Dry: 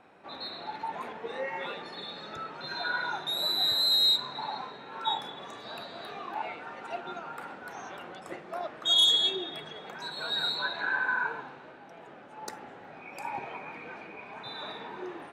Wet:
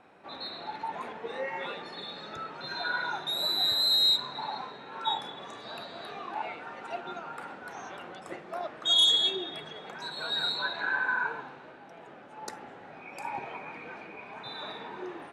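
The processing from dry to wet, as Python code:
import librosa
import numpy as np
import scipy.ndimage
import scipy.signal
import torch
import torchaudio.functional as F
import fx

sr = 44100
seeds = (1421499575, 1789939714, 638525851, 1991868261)

y = scipy.signal.sosfilt(scipy.signal.butter(8, 12000.0, 'lowpass', fs=sr, output='sos'), x)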